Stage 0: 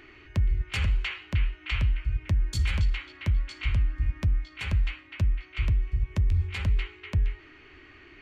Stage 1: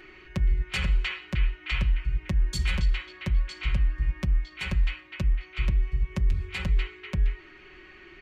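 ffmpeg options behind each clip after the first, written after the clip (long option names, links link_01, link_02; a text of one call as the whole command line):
ffmpeg -i in.wav -af "aecho=1:1:5.4:0.71" out.wav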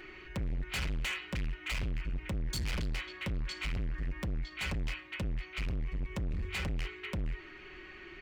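ffmpeg -i in.wav -af "volume=32dB,asoftclip=hard,volume=-32dB" out.wav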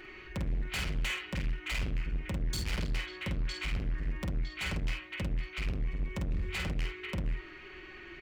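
ffmpeg -i in.wav -filter_complex "[0:a]asplit=2[link_01][link_02];[link_02]adelay=49,volume=-5dB[link_03];[link_01][link_03]amix=inputs=2:normalize=0" out.wav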